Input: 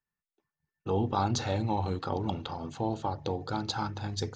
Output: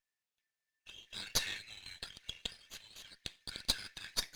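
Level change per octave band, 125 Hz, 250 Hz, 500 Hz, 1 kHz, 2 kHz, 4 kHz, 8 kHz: -24.5, -24.0, -22.5, -22.5, -0.5, +2.0, +2.0 dB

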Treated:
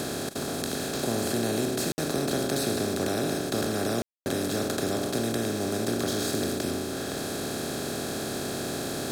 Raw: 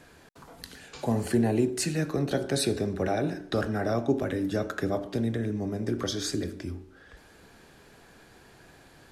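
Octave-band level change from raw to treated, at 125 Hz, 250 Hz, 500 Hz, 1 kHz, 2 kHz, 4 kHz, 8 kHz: -2.0, +0.5, +1.5, +3.0, +3.5, +5.5, +6.5 dB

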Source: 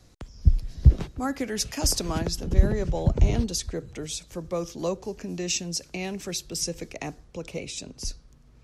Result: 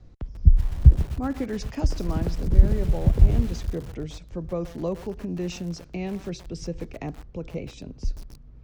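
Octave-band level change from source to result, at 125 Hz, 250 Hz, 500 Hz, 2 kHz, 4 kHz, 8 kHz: +3.0, +1.5, -1.0, -5.5, -11.5, -16.0 dB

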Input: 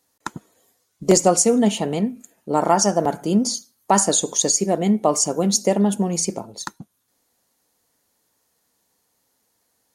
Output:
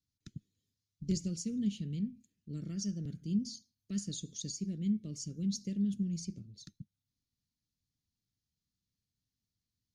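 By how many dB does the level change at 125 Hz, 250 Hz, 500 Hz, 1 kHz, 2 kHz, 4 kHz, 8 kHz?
-10.5 dB, -13.5 dB, -32.0 dB, under -40 dB, under -25 dB, -19.0 dB, -24.5 dB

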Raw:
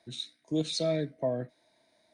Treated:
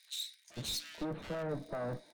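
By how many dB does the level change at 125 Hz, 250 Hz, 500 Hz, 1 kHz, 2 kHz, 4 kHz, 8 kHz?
-6.0, -8.5, -8.0, -1.0, +1.0, -3.0, 0.0 dB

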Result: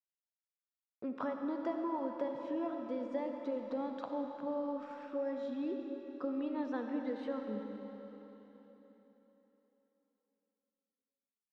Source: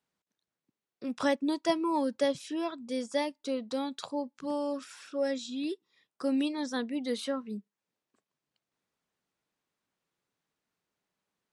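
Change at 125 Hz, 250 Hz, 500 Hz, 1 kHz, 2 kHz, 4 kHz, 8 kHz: n/a, -5.5 dB, -5.5 dB, -5.5 dB, -11.0 dB, -20.0 dB, under -25 dB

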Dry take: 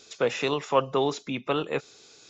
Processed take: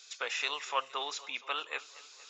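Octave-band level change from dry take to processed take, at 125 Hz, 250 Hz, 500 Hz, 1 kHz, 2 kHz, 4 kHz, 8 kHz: under -35 dB, -27.0 dB, -18.0 dB, -6.5 dB, -1.5 dB, -1.0 dB, n/a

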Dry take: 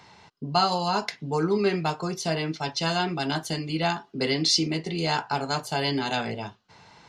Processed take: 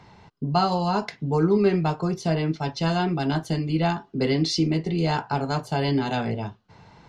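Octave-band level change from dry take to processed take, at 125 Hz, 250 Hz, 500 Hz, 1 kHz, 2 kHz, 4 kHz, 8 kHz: +6.5, +5.0, +3.0, +0.5, -2.0, -5.0, -6.5 dB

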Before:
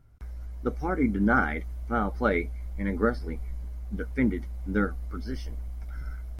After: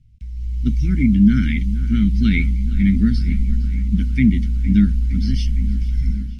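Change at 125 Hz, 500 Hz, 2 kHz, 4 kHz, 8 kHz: +16.0 dB, under -10 dB, +0.5 dB, +14.5 dB, n/a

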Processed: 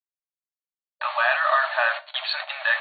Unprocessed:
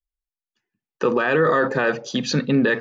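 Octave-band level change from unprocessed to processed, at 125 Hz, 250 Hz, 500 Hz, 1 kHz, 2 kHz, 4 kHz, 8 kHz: under -40 dB, under -40 dB, -10.5 dB, +1.5 dB, +2.0 dB, +2.0 dB, n/a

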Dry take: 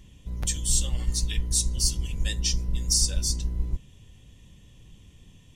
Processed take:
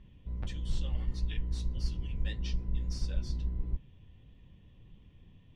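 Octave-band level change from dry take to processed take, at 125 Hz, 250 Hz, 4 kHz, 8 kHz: -5.5, -5.5, -18.0, -30.5 dB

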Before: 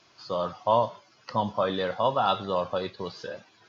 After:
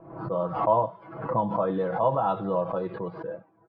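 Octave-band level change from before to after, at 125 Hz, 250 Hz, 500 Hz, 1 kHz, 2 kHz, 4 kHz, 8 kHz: +4.0 dB, +3.5 dB, +1.5 dB, +0.5 dB, -5.0 dB, under -15 dB, n/a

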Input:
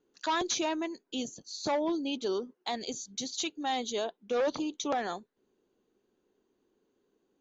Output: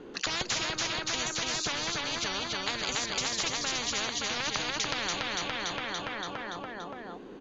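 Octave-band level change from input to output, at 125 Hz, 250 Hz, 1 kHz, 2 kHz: +12.0, -5.5, -0.5, +9.5 dB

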